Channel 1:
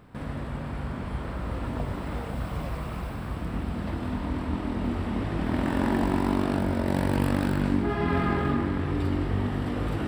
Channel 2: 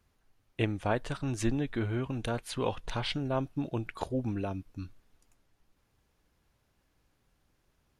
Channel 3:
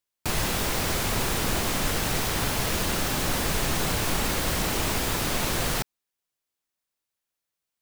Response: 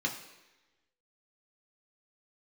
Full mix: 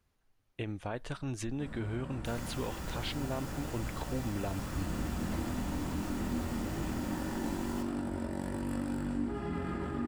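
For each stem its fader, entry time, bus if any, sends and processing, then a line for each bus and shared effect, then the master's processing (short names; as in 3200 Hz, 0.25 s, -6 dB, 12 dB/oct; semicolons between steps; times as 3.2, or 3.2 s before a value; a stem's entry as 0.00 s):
-10.5 dB, 1.45 s, bus A, send -12.5 dB, graphic EQ 125/250/8000 Hz -4/+3/+10 dB
-2.5 dB, 0.00 s, bus A, no send, dry
-18.5 dB, 2.00 s, no bus, send -6.5 dB, dry
bus A: 0.0 dB, vocal rider; limiter -27 dBFS, peak gain reduction 9.5 dB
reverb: on, RT60 1.1 s, pre-delay 3 ms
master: dry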